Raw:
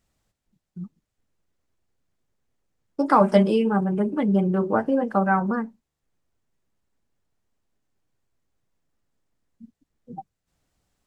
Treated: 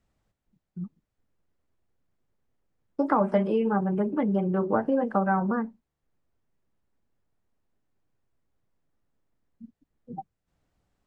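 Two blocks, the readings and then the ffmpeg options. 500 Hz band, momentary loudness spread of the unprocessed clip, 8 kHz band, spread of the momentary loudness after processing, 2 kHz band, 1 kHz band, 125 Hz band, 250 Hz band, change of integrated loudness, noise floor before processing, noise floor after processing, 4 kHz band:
-3.5 dB, 20 LU, n/a, 18 LU, -5.5 dB, -4.5 dB, -4.5 dB, -4.0 dB, -4.0 dB, -83 dBFS, -83 dBFS, under -10 dB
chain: -filter_complex "[0:a]acrossover=split=2500[a][b];[b]acompressor=threshold=-52dB:ratio=4:attack=1:release=60[c];[a][c]amix=inputs=2:normalize=0,highshelf=f=3.4k:g=-11.5,acrossover=split=470|1100[d][e][f];[d]acompressor=threshold=-25dB:ratio=4[g];[e]acompressor=threshold=-25dB:ratio=4[h];[f]acompressor=threshold=-32dB:ratio=4[i];[g][h][i]amix=inputs=3:normalize=0"

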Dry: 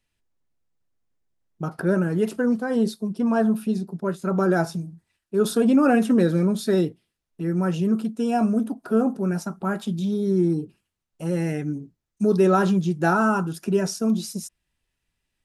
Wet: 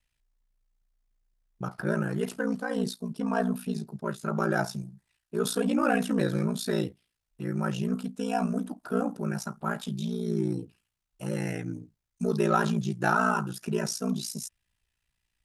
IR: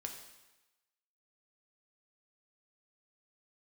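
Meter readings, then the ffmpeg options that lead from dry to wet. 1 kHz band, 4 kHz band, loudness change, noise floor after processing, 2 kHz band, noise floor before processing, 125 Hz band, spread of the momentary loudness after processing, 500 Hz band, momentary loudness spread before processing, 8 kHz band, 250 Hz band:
-3.5 dB, -1.0 dB, -7.0 dB, -83 dBFS, -2.0 dB, -80 dBFS, -5.5 dB, 11 LU, -7.5 dB, 11 LU, -1.0 dB, -8.0 dB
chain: -filter_complex "[0:a]equalizer=f=300:t=o:w=2.2:g=-8,asplit=2[a][b];[b]asoftclip=type=tanh:threshold=-21dB,volume=-11dB[c];[a][c]amix=inputs=2:normalize=0,aeval=exprs='val(0)*sin(2*PI*29*n/s)':c=same"

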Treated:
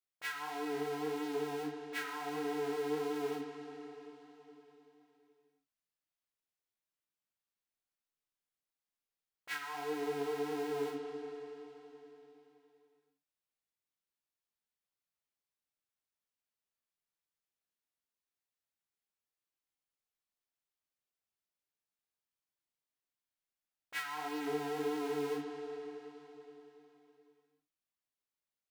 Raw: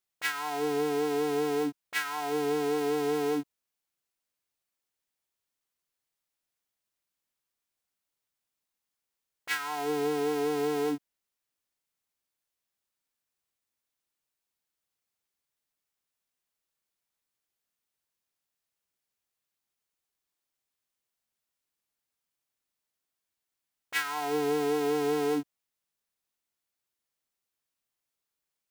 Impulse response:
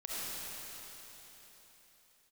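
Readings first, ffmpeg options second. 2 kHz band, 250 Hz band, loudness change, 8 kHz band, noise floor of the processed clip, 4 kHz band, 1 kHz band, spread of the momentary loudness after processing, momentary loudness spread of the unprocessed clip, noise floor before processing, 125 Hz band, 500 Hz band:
-7.5 dB, -8.0 dB, -9.0 dB, -10.5 dB, under -85 dBFS, -8.5 dB, -7.5 dB, 18 LU, 6 LU, under -85 dBFS, -8.0 dB, -8.5 dB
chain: -filter_complex "[0:a]flanger=delay=16.5:depth=5.6:speed=1.6,asplit=2[a][b];[1:a]atrim=start_sample=2205,lowpass=5.2k[c];[b][c]afir=irnorm=-1:irlink=0,volume=-6.5dB[d];[a][d]amix=inputs=2:normalize=0,volume=-7.5dB"

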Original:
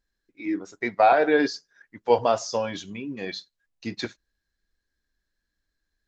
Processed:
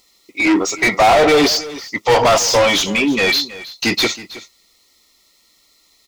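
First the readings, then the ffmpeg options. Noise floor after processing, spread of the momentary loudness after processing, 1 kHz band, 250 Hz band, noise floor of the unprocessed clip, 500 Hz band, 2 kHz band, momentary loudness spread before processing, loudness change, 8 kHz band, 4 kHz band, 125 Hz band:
-57 dBFS, 13 LU, +8.0 dB, +11.0 dB, -82 dBFS, +8.5 dB, +14.0 dB, 17 LU, +10.0 dB, n/a, +20.0 dB, +12.5 dB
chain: -filter_complex "[0:a]asuperstop=centerf=1600:order=20:qfactor=3.6,crystalizer=i=3.5:c=0,asplit=2[a][b];[b]highpass=f=720:p=1,volume=34dB,asoftclip=type=tanh:threshold=-4.5dB[c];[a][c]amix=inputs=2:normalize=0,lowpass=f=3k:p=1,volume=-6dB,asplit=2[d][e];[e]aecho=0:1:321:0.141[f];[d][f]amix=inputs=2:normalize=0"

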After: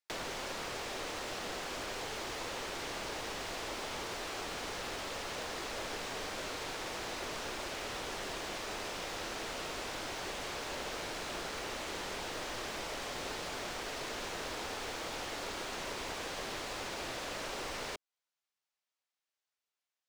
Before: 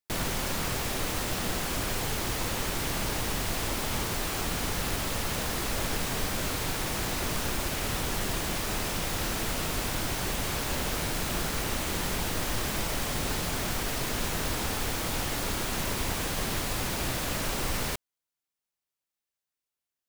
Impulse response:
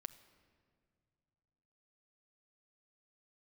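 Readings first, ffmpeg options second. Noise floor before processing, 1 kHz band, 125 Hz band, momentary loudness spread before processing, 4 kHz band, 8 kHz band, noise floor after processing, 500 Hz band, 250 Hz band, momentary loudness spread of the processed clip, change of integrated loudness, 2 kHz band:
under -85 dBFS, -6.0 dB, -18.5 dB, 0 LU, -7.0 dB, -11.5 dB, under -85 dBFS, -5.5 dB, -12.0 dB, 0 LU, -9.0 dB, -6.5 dB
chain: -filter_complex "[0:a]acrossover=split=410 7400:gain=0.1 1 0.158[a][b][c];[a][b][c]amix=inputs=3:normalize=0,acrossover=split=480[d][e];[e]acompressor=threshold=-44dB:ratio=2.5[f];[d][f]amix=inputs=2:normalize=0,volume=1dB"

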